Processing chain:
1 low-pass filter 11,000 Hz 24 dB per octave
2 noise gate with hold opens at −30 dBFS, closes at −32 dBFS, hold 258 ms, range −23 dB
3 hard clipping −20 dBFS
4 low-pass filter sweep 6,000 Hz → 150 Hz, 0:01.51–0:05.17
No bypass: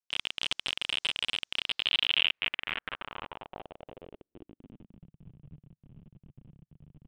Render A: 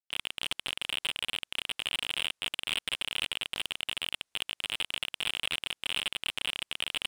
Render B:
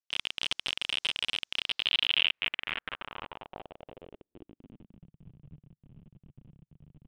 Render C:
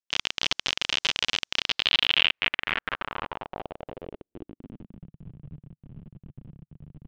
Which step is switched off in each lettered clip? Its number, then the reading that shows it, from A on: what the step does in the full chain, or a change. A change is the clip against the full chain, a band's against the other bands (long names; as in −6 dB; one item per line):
4, 125 Hz band −3.0 dB
1, change in momentary loudness spread −1 LU
3, distortion level −7 dB